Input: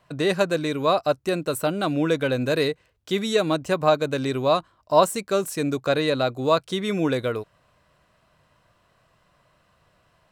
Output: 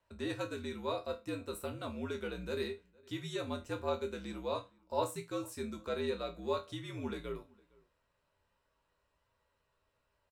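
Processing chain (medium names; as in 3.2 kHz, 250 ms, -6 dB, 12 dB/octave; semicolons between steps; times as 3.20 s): chord resonator D#2 minor, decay 0.24 s; frequency shift -65 Hz; echo from a far wall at 79 m, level -26 dB; trim -6 dB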